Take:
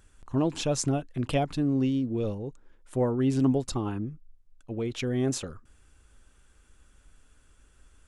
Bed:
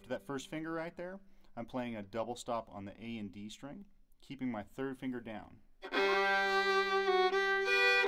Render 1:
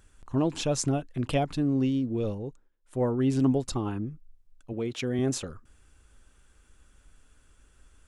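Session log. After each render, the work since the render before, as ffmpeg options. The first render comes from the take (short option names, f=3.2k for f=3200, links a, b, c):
-filter_complex "[0:a]asettb=1/sr,asplit=3[a][b][c];[a]atrim=end=4.734[d];[b]atrim=start=4.73:end=5.19,asetpts=PTS-STARTPTS,afade=t=in:d=0.004:c=qsin,afade=t=out:st=0.456:d=0.004:c=qsin,highpass=110[e];[c]atrim=start=5.186[f];[d][e]acrossfade=d=0.004:c1=hsin:c2=qsin[g];[g][f]acrossfade=d=0.004:c1=qsin:c2=hsin,asplit=3[h][i][j];[h]atrim=end=2.7,asetpts=PTS-STARTPTS,afade=t=out:st=2.46:d=0.24:silence=0.105925[k];[i]atrim=start=2.7:end=2.81,asetpts=PTS-STARTPTS,volume=-19.5dB[l];[j]atrim=start=2.81,asetpts=PTS-STARTPTS,afade=t=in:d=0.24:silence=0.105925[m];[k][l][m]concat=n=3:v=0:a=1"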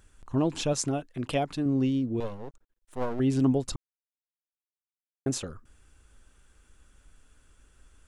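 -filter_complex "[0:a]asettb=1/sr,asplit=3[a][b][c];[a]atrim=end=0.734[d];[b]atrim=start=0.73:end=1.66,asetpts=PTS-STARTPTS,afade=t=in:d=0.004:c=qsin,afade=t=out:st=0.926:d=0.004:c=qsin,lowshelf=f=150:g=-9[e];[c]atrim=start=1.656[f];[d][e]acrossfade=d=0.004:c1=hsin:c2=qsin[g];[g][f]acrossfade=d=0.004:c1=qsin:c2=hsin,asettb=1/sr,asplit=3[h][i][j];[h]atrim=end=2.204[k];[i]atrim=start=2.2:end=3.2,asetpts=PTS-STARTPTS,afade=t=in:d=0.004:c=qsin,afade=t=out:st=0.996:d=0.004:c=qsin,aeval=exprs='max(val(0),0)':c=same[l];[j]atrim=start=3.196[m];[k][l]acrossfade=d=0.004:c1=hsin:c2=qsin[n];[n][m]acrossfade=d=0.004:c1=qsin:c2=hsin,asplit=3[o][p][q];[o]atrim=end=3.76,asetpts=PTS-STARTPTS,afade=t=out:st=3.756:d=0.004:c=hsin[r];[p]atrim=start=3.76:end=5.26,asetpts=PTS-STARTPTS,volume=0[s];[q]atrim=start=5.26,asetpts=PTS-STARTPTS,afade=t=in:d=0.004:c=hsin[t];[r][s][t]concat=n=3:v=0:a=1"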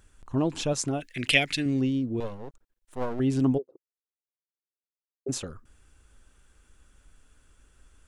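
-filter_complex "[0:a]asplit=3[a][b][c];[a]afade=t=out:st=1:d=0.02[d];[b]highshelf=f=1.5k:t=q:w=3:g=11.5,afade=t=in:st=1:d=0.02,afade=t=out:st=1.79:d=0.02[e];[c]afade=t=in:st=1.79:d=0.02[f];[d][e][f]amix=inputs=3:normalize=0,asplit=3[g][h][i];[g]afade=t=out:st=3.57:d=0.02[j];[h]asuperpass=centerf=440:order=4:qfactor=2.6,afade=t=in:st=3.57:d=0.02,afade=t=out:st=5.28:d=0.02[k];[i]afade=t=in:st=5.28:d=0.02[l];[j][k][l]amix=inputs=3:normalize=0"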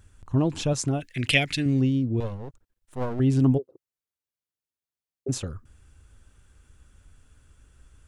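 -af "equalizer=f=94:w=0.88:g=10.5"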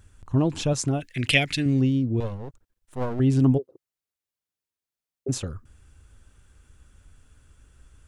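-af "volume=1dB"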